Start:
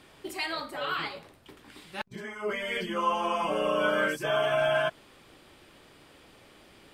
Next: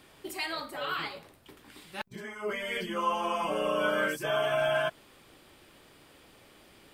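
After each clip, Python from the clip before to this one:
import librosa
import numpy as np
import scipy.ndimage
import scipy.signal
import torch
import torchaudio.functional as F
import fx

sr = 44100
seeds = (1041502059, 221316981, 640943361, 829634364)

y = fx.high_shelf(x, sr, hz=12000.0, db=11.0)
y = y * 10.0 ** (-2.0 / 20.0)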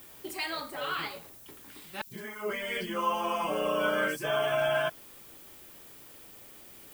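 y = fx.dmg_noise_colour(x, sr, seeds[0], colour='violet', level_db=-52.0)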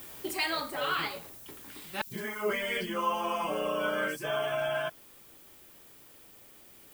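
y = fx.rider(x, sr, range_db=5, speed_s=0.5)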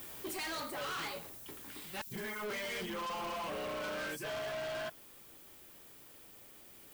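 y = np.clip(10.0 ** (36.0 / 20.0) * x, -1.0, 1.0) / 10.0 ** (36.0 / 20.0)
y = y * 10.0 ** (-1.5 / 20.0)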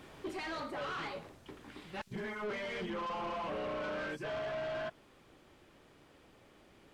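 y = fx.spacing_loss(x, sr, db_at_10k=22)
y = y * 10.0 ** (3.0 / 20.0)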